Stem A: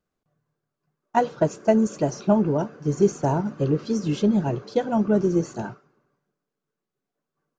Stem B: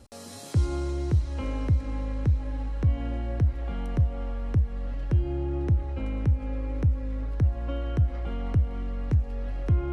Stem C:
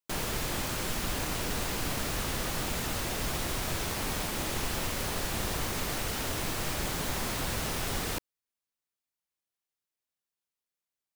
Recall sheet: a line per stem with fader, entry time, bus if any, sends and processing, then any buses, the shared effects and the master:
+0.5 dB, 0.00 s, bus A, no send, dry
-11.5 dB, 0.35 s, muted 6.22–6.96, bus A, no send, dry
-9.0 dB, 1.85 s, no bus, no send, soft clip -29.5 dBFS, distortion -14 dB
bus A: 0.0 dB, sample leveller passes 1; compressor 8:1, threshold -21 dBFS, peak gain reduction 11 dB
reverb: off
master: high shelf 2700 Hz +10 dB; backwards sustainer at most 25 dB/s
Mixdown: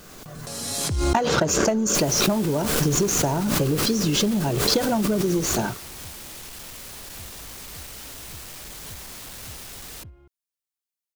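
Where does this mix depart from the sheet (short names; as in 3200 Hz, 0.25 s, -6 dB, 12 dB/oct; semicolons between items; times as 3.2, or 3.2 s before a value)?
stem A +0.5 dB -> +7.5 dB; stem B -11.5 dB -> -21.5 dB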